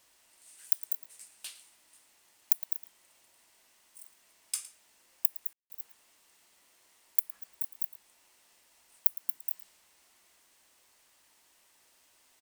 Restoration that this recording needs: clip repair -9 dBFS; room tone fill 5.53–5.7; inverse comb 0.111 s -17.5 dB

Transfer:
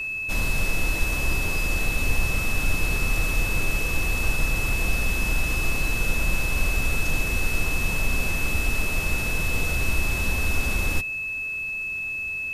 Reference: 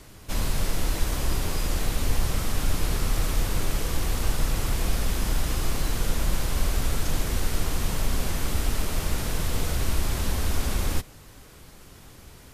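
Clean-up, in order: notch 2600 Hz, Q 30

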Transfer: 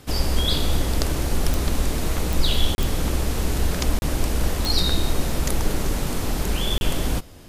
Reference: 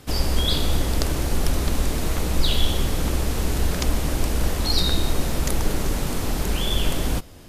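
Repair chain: de-click; interpolate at 2.75/3.99/6.78, 31 ms

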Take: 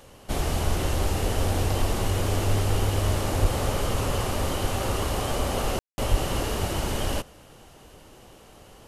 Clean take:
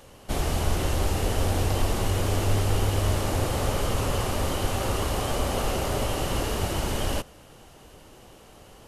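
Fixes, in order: clip repair -12 dBFS; 3.41–3.53 HPF 140 Hz 24 dB/oct; 6.1–6.22 HPF 140 Hz 24 dB/oct; room tone fill 5.79–5.98

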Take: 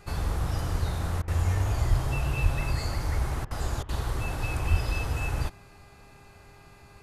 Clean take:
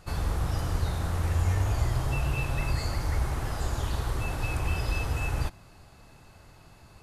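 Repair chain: de-hum 402.8 Hz, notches 6; 1.89–2.01 HPF 140 Hz 24 dB/oct; 2.42–2.54 HPF 140 Hz 24 dB/oct; 4.7–4.82 HPF 140 Hz 24 dB/oct; interpolate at 1.22/3.45/3.83, 57 ms

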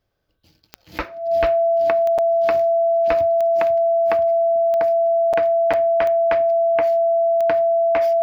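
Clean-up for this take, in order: de-click; notch 670 Hz, Q 30; interpolate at 2.18/5.33/5.73, 6.4 ms

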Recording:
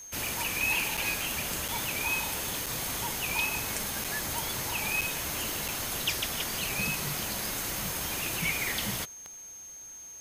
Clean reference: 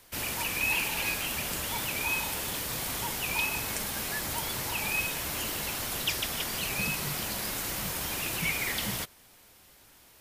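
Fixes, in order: de-click; notch 6400 Hz, Q 30; interpolate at 0.97/1.68/2.66/4.04/5.01/5.68, 5.8 ms

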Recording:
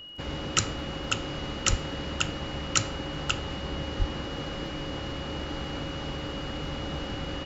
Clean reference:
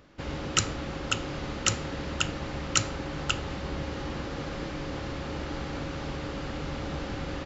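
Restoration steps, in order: de-click; notch 2900 Hz, Q 30; 1.69–1.81 HPF 140 Hz 24 dB/oct; 3.98–4.1 HPF 140 Hz 24 dB/oct

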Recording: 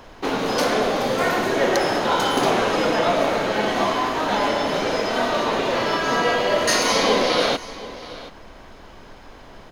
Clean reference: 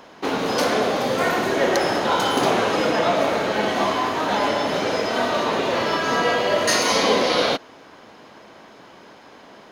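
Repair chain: noise print and reduce 6 dB; inverse comb 0.728 s -17 dB

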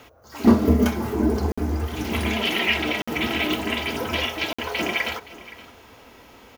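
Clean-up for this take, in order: interpolate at 1.52/3.02/4.53, 55 ms; inverse comb 0.519 s -18 dB

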